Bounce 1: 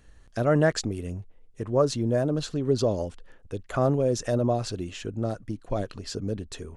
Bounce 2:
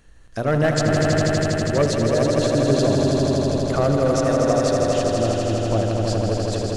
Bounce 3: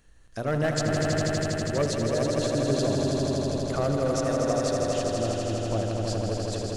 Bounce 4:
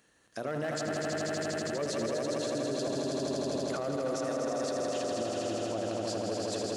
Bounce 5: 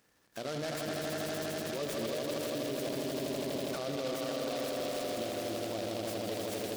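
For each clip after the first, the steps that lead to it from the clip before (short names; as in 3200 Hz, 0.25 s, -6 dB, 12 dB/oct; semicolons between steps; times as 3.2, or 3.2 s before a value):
notches 60/120/180/240/300/360/420/480/540/600 Hz; hard clip -17 dBFS, distortion -17 dB; swelling echo 81 ms, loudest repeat 5, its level -5.5 dB; gain +3.5 dB
high shelf 4800 Hz +4.5 dB; gain -7 dB
HPF 220 Hz 12 dB/oct; limiter -24.5 dBFS, peak gain reduction 10.5 dB
noise-modulated delay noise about 3300 Hz, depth 0.08 ms; gain -3 dB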